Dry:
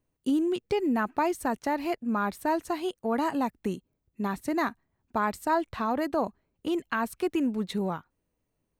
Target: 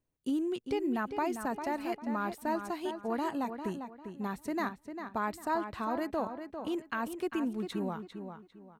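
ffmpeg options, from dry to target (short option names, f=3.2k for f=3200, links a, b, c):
-filter_complex "[0:a]asplit=2[a][b];[b]adelay=399,lowpass=f=3.9k:p=1,volume=-8dB,asplit=2[c][d];[d]adelay=399,lowpass=f=3.9k:p=1,volume=0.3,asplit=2[e][f];[f]adelay=399,lowpass=f=3.9k:p=1,volume=0.3,asplit=2[g][h];[h]adelay=399,lowpass=f=3.9k:p=1,volume=0.3[i];[a][c][e][g][i]amix=inputs=5:normalize=0,volume=-6dB"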